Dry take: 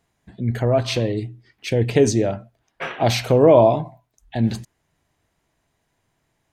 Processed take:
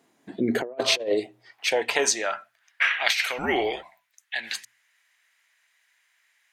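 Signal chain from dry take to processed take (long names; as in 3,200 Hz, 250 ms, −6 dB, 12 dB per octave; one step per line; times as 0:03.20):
high-pass filter sweep 270 Hz → 1,900 Hz, 0:00.19–0:02.79
0:03.38–0:03.83: frequency shifter −240 Hz
mains-hum notches 60/120/180/240 Hz
compressor whose output falls as the input rises −24 dBFS, ratio −0.5
level +1.5 dB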